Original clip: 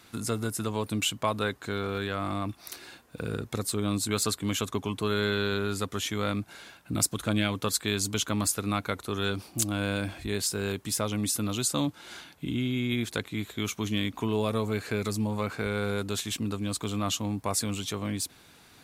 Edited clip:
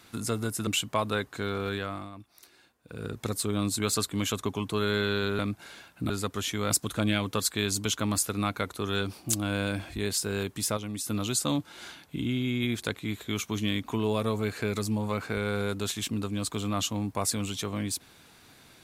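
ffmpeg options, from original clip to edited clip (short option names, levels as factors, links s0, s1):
-filter_complex "[0:a]asplit=9[s0][s1][s2][s3][s4][s5][s6][s7][s8];[s0]atrim=end=0.672[s9];[s1]atrim=start=0.958:end=2.39,asetpts=PTS-STARTPTS,afade=t=out:st=1.082:d=0.35:silence=0.223872[s10];[s2]atrim=start=2.39:end=3.14,asetpts=PTS-STARTPTS,volume=0.224[s11];[s3]atrim=start=3.14:end=5.682,asetpts=PTS-STARTPTS,afade=t=in:d=0.35:silence=0.223872[s12];[s4]atrim=start=6.278:end=6.992[s13];[s5]atrim=start=5.678:end=6.282[s14];[s6]atrim=start=6.988:end=11.062[s15];[s7]atrim=start=11.058:end=11.372,asetpts=PTS-STARTPTS,volume=0.501[s16];[s8]atrim=start=11.368[s17];[s10][s11][s12]concat=n=3:v=0:a=1[s18];[s9][s18]acrossfade=d=0.004:c1=hsin:c2=hsin[s19];[s19][s13]acrossfade=d=0.004:c1=hsin:c2=hsin[s20];[s20][s14]acrossfade=d=0.004:c1=hsin:c2=hsin[s21];[s21][s15]acrossfade=d=0.004:c1=hsin:c2=hsin[s22];[s22][s16]acrossfade=d=0.004:c1=hsin:c2=hsin[s23];[s23][s17]acrossfade=d=0.004:c1=hsin:c2=hsin"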